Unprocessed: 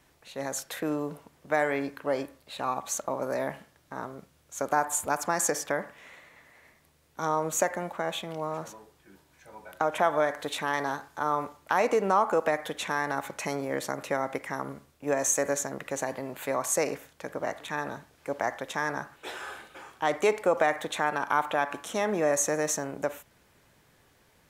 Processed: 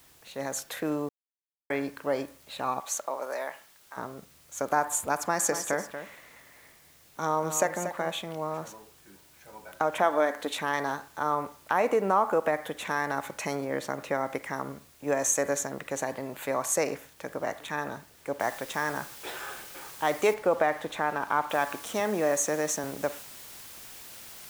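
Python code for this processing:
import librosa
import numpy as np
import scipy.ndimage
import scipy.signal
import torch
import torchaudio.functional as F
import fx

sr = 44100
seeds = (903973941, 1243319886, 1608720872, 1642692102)

y = fx.highpass(x, sr, hz=fx.line((2.79, 390.0), (3.96, 1000.0)), slope=12, at=(2.79, 3.96), fade=0.02)
y = fx.echo_single(y, sr, ms=235, db=-10.0, at=(5.18, 8.1))
y = fx.low_shelf_res(y, sr, hz=180.0, db=-6.5, q=3.0, at=(10.03, 10.51))
y = fx.dynamic_eq(y, sr, hz=5100.0, q=0.93, threshold_db=-49.0, ratio=4.0, max_db=-8, at=(11.33, 12.85))
y = fx.high_shelf(y, sr, hz=5600.0, db=-7.5, at=(13.64, 14.26))
y = fx.noise_floor_step(y, sr, seeds[0], at_s=18.4, before_db=-59, after_db=-46, tilt_db=0.0)
y = fx.high_shelf(y, sr, hz=3400.0, db=-11.0, at=(20.34, 21.5))
y = fx.cheby1_highpass(y, sr, hz=170.0, order=2, at=(22.0, 22.84))
y = fx.edit(y, sr, fx.silence(start_s=1.09, length_s=0.61), tone=tone)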